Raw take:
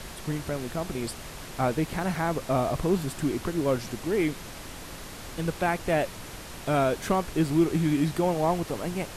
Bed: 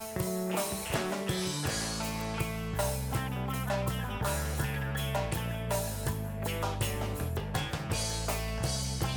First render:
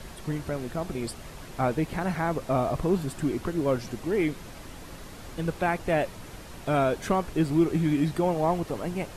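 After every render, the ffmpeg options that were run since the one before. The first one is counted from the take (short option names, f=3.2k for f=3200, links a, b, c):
-af "afftdn=nr=6:nf=-42"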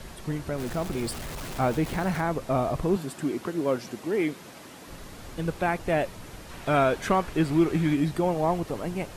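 -filter_complex "[0:a]asettb=1/sr,asplit=3[a][b][c];[a]atrim=end=0.584[d];[b]atrim=start=0.58:end=2.21,asetpts=PTS-STARTPTS,afade=t=in:d=0.004:c=qsin,afade=t=out:st=1.626:d=0.004:c=qsin,aeval=exprs='val(0)+0.5*0.0188*sgn(val(0))':c=same[e];[c]atrim=start=2.206[f];[d][e]acrossfade=d=0.004:c1=hsin:c2=qsin[g];[g][f]acrossfade=d=0.004:c1=qsin:c2=hsin,asettb=1/sr,asplit=3[h][i][j];[h]atrim=end=2.964[k];[i]atrim=start=2.96:end=4.88,asetpts=PTS-STARTPTS,afade=t=in:d=0.004:c=qsin,afade=t=out:st=1.916:d=0.004:c=qsin,highpass=180[l];[j]atrim=start=4.876[m];[k][l]acrossfade=d=0.004:c1=hsin:c2=qsin[n];[n][m]acrossfade=d=0.004:c1=qsin:c2=hsin,asettb=1/sr,asplit=3[o][p][q];[o]atrim=end=6.494[r];[p]atrim=start=6.49:end=7.95,asetpts=PTS-STARTPTS,afade=t=in:d=0.004:c=qsin,afade=t=out:st=1.456:d=0.004:c=qsin,equalizer=f=1.8k:w=0.53:g=5[s];[q]atrim=start=7.946[t];[r][s]acrossfade=d=0.004:c1=hsin:c2=qsin[u];[u][t]acrossfade=d=0.004:c1=qsin:c2=hsin"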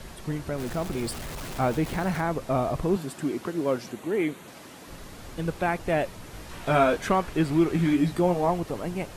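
-filter_complex "[0:a]asettb=1/sr,asplit=3[a][b][c];[a]atrim=end=3.914[d];[b]atrim=start=3.91:end=4.48,asetpts=PTS-STARTPTS,afade=t=in:d=0.004:c=qsin,afade=t=out:st=0.566:d=0.004:c=qsin,equalizer=f=5.1k:w=5.5:g=-14.5[e];[c]atrim=start=4.476[f];[d][e]acrossfade=d=0.004:c1=hsin:c2=qsin[g];[g][f]acrossfade=d=0.004:c1=qsin:c2=hsin,asettb=1/sr,asplit=3[h][i][j];[h]atrim=end=6.324[k];[i]atrim=start=6.32:end=6.97,asetpts=PTS-STARTPTS,afade=t=in:d=0.004:c=qsin,afade=t=out:st=0.646:d=0.004:c=qsin,asplit=2[l][m];[m]adelay=19,volume=-4.5dB[n];[l][n]amix=inputs=2:normalize=0,atrim=end_sample=28665[o];[j]atrim=start=6.966[p];[k][o]acrossfade=d=0.004:c1=hsin:c2=qsin[q];[q][p]acrossfade=d=0.004:c1=qsin:c2=hsin,asettb=1/sr,asplit=3[r][s][t];[r]atrim=end=7.774[u];[s]atrim=start=7.77:end=8.5,asetpts=PTS-STARTPTS,afade=t=in:d=0.004:c=qsin,afade=t=out:st=0.726:d=0.004:c=qsin,asplit=2[v][w];[w]adelay=17,volume=-6dB[x];[v][x]amix=inputs=2:normalize=0,atrim=end_sample=32193[y];[t]atrim=start=8.496[z];[u][y]acrossfade=d=0.004:c1=hsin:c2=qsin[aa];[aa][z]acrossfade=d=0.004:c1=qsin:c2=hsin"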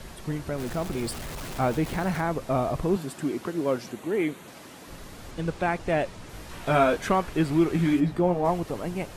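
-filter_complex "[0:a]asettb=1/sr,asplit=3[a][b][c];[a]atrim=end=5.314[d];[b]atrim=start=5.31:end=6.29,asetpts=PTS-STARTPTS,afade=t=in:d=0.004:c=qsin,afade=t=out:st=0.976:d=0.004:c=qsin,lowpass=9k[e];[c]atrim=start=6.286[f];[d][e]acrossfade=d=0.004:c1=hsin:c2=qsin[g];[g][f]acrossfade=d=0.004:c1=qsin:c2=hsin,asplit=3[h][i][j];[h]afade=t=out:st=7.99:d=0.02[k];[i]highshelf=f=3.1k:g=-11.5,afade=t=in:st=7.99:d=0.02,afade=t=out:st=8.44:d=0.02[l];[j]afade=t=in:st=8.44:d=0.02[m];[k][l][m]amix=inputs=3:normalize=0"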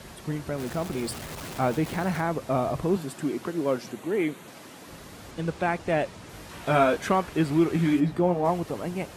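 -af "highpass=64,bandreject=f=60:t=h:w=6,bandreject=f=120:t=h:w=6"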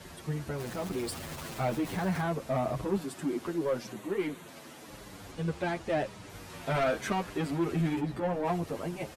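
-filter_complex "[0:a]asoftclip=type=tanh:threshold=-21dB,asplit=2[a][b];[b]adelay=8.2,afreqshift=-0.93[c];[a][c]amix=inputs=2:normalize=1"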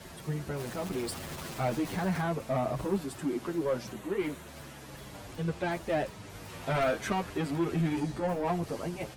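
-filter_complex "[1:a]volume=-19dB[a];[0:a][a]amix=inputs=2:normalize=0"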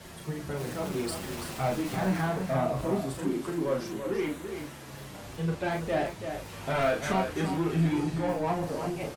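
-filter_complex "[0:a]asplit=2[a][b];[b]adelay=37,volume=-4dB[c];[a][c]amix=inputs=2:normalize=0,asplit=2[d][e];[e]aecho=0:1:334:0.422[f];[d][f]amix=inputs=2:normalize=0"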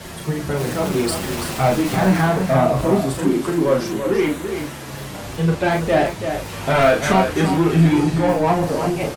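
-af "volume=12dB"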